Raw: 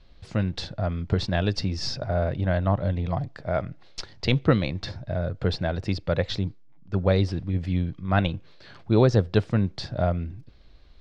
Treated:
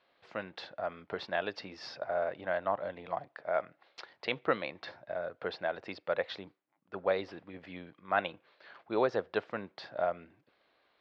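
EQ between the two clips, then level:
band-pass filter 590–2,400 Hz
−2.0 dB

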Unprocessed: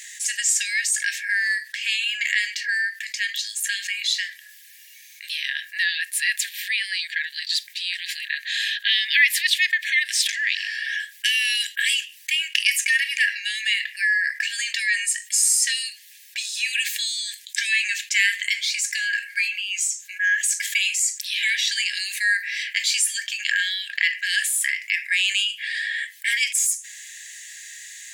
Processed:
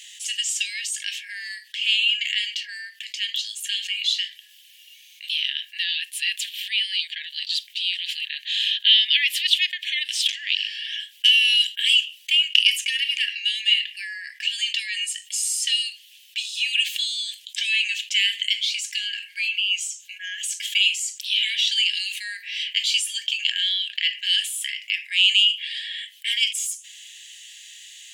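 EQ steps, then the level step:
high-pass with resonance 3,000 Hz, resonance Q 6.5
−7.5 dB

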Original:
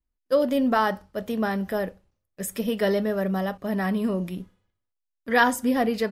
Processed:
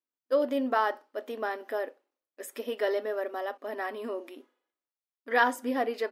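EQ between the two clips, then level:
linear-phase brick-wall high-pass 240 Hz
low-shelf EQ 350 Hz −5.5 dB
parametric band 9,900 Hz −9 dB 2.4 octaves
−2.5 dB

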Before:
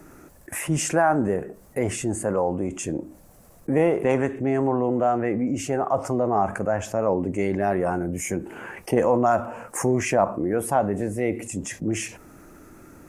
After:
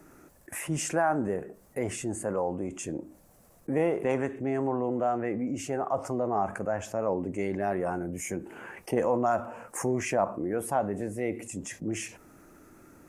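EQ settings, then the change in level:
low-shelf EQ 110 Hz −4.5 dB
−6.0 dB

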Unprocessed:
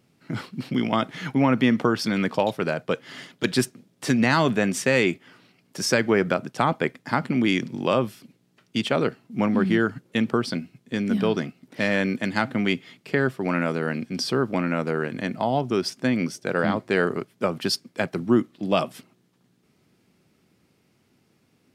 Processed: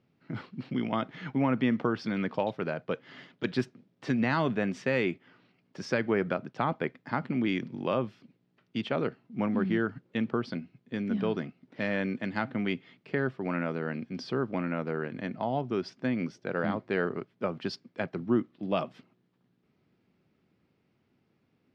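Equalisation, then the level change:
high-frequency loss of the air 210 metres
−6.5 dB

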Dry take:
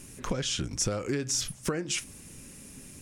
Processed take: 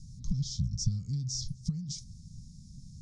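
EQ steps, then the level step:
inverse Chebyshev band-stop filter 320–2,900 Hz, stop band 40 dB
low-pass filter 4,500 Hz 24 dB per octave
+5.5 dB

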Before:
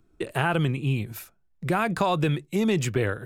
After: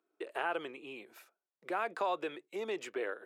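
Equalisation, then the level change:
high-pass filter 380 Hz 24 dB per octave
low-pass filter 2,400 Hz 6 dB per octave
−8.0 dB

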